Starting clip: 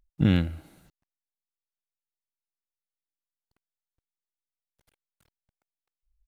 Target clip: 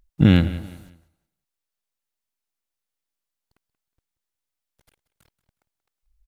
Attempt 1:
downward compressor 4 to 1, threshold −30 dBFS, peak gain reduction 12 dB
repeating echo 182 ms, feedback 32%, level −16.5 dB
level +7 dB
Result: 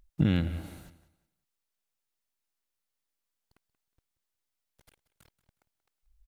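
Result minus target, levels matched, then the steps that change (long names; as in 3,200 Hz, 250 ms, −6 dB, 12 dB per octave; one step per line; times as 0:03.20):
downward compressor: peak gain reduction +12 dB
remove: downward compressor 4 to 1, threshold −30 dBFS, peak gain reduction 12 dB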